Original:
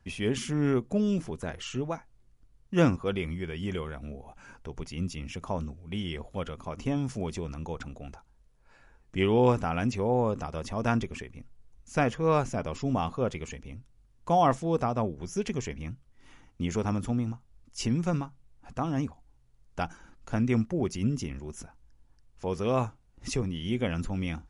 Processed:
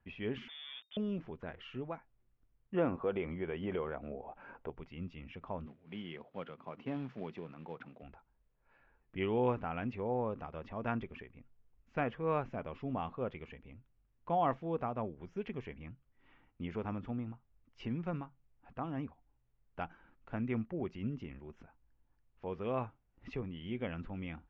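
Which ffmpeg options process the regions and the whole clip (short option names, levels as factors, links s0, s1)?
-filter_complex "[0:a]asettb=1/sr,asplit=3[s0][s1][s2];[s0]atrim=end=0.484[s3];[s1]atrim=start=0.48:end=0.97,asetpts=PTS-STARTPTS,afade=t=in:d=0.004:c=qsin,afade=t=out:st=0.486:d=0.004:c=qsin,acompressor=threshold=0.0141:ratio=2:attack=3.2:release=140:knee=1:detection=peak,aeval=exprs='val(0)*gte(abs(val(0)),0.00891)':c=same,lowpass=f=3100:t=q:w=0.5098,lowpass=f=3100:t=q:w=0.6013,lowpass=f=3100:t=q:w=0.9,lowpass=f=3100:t=q:w=2.563,afreqshift=-3700[s4];[s2]atrim=start=0.966[s5];[s3][s4]acrossfade=d=0.004:c1=hsin:c2=qsin[s6];[s6][s5]acrossfade=d=0.004:c1=qsin:c2=hsin,asettb=1/sr,asplit=3[s7][s8][s9];[s7]atrim=end=2.744[s10];[s8]atrim=start=2.74:end=4.7,asetpts=PTS-STARTPTS,afade=t=in:d=0.004:c=qsin,afade=t=out:st=1.956:d=0.004:c=qsin,equalizer=f=600:t=o:w=2.6:g=12,acompressor=threshold=0.0631:ratio=2:attack=3.2:release=140:knee=1:detection=peak[s11];[s9]atrim=start=4.696[s12];[s10][s11]acrossfade=d=0.004:c1=hsin:c2=qsin[s13];[s13][s12]acrossfade=d=0.004:c1=qsin:c2=hsin,asettb=1/sr,asplit=3[s14][s15][s16];[s14]atrim=end=5.664[s17];[s15]atrim=start=5.66:end=8.03,asetpts=PTS-STARTPTS,afade=t=in:d=0.004:c=qsin,afade=t=out:st=2.366:d=0.004:c=qsin,highpass=f=130:w=0.5412,highpass=f=130:w=1.3066,acrusher=bits=4:mode=log:mix=0:aa=0.000001[s18];[s16]atrim=start=8.026[s19];[s17][s18]acrossfade=d=0.004:c1=hsin:c2=qsin[s20];[s20][s19]acrossfade=d=0.004:c1=qsin:c2=hsin,lowpass=f=2900:w=0.5412,lowpass=f=2900:w=1.3066,lowshelf=f=160:g=-5.5,volume=0.398"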